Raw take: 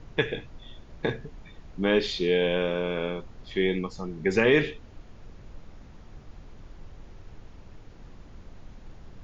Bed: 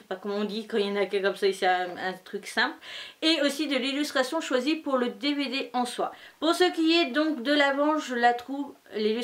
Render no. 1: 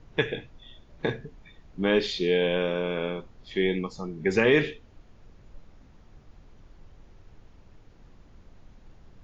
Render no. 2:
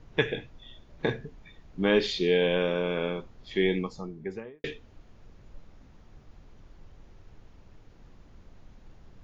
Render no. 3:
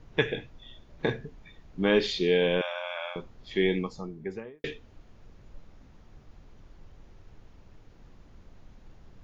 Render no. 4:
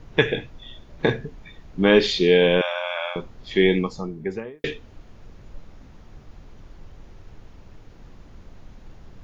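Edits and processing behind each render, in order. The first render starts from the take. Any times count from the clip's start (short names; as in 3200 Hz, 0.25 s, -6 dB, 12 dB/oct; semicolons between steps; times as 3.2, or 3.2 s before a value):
noise print and reduce 6 dB
3.71–4.64 studio fade out
2.61–3.16 brick-wall FIR high-pass 540 Hz
gain +7.5 dB; limiter -2 dBFS, peak gain reduction 1 dB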